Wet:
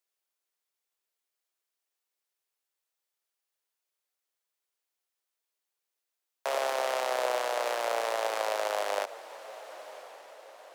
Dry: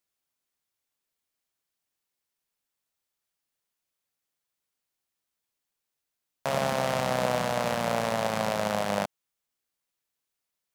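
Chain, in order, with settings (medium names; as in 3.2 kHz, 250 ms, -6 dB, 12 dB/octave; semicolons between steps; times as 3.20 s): steep high-pass 340 Hz 48 dB/octave; echo that smears into a reverb 1023 ms, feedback 50%, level -15.5 dB; endings held to a fixed fall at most 430 dB/s; trim -2 dB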